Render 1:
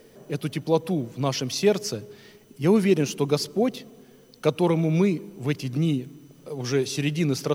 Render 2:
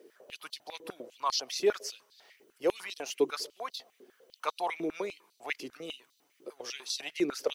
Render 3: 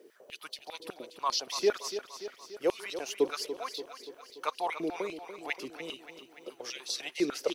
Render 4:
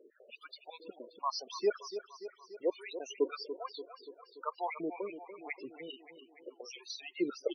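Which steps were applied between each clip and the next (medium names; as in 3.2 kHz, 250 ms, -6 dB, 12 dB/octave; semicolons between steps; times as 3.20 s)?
harmonic-percussive split harmonic -8 dB; step-sequenced high-pass 10 Hz 360–4200 Hz; trim -7.5 dB
feedback delay 289 ms, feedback 60%, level -11 dB
loudest bins only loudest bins 16; trim -3.5 dB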